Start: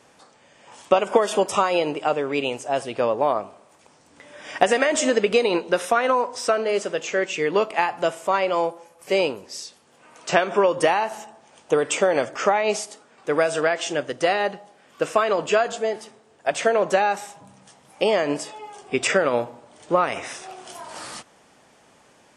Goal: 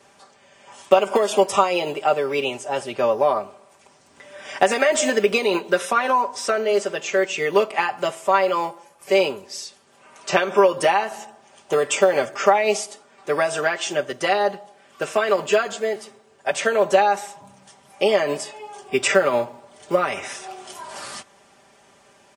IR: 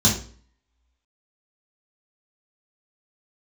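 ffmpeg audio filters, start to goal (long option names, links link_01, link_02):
-filter_complex "[0:a]acrossover=split=300[link_01][link_02];[link_01]acrusher=samples=13:mix=1:aa=0.000001:lfo=1:lforange=13:lforate=0.27[link_03];[link_02]aecho=1:1:5.1:0.95[link_04];[link_03][link_04]amix=inputs=2:normalize=0,volume=-1dB"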